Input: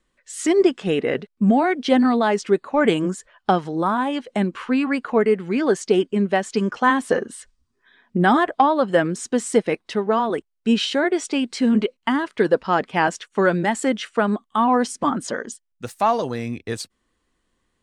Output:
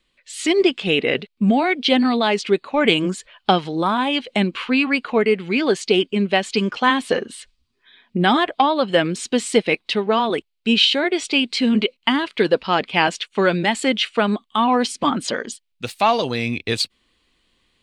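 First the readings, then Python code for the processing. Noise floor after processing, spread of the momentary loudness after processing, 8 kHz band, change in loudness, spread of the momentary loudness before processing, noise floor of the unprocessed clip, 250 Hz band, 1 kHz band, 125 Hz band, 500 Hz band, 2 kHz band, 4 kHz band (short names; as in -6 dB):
-70 dBFS, 6 LU, +1.0 dB, +1.5 dB, 9 LU, -73 dBFS, 0.0 dB, +0.5 dB, +0.5 dB, +0.5 dB, +4.0 dB, +10.5 dB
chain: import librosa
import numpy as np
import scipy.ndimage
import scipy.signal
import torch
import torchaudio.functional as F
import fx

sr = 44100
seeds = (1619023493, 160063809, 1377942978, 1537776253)

p1 = fx.band_shelf(x, sr, hz=3200.0, db=11.0, octaves=1.3)
p2 = fx.rider(p1, sr, range_db=10, speed_s=0.5)
p3 = p1 + F.gain(torch.from_numpy(p2), -2.5).numpy()
y = F.gain(torch.from_numpy(p3), -4.5).numpy()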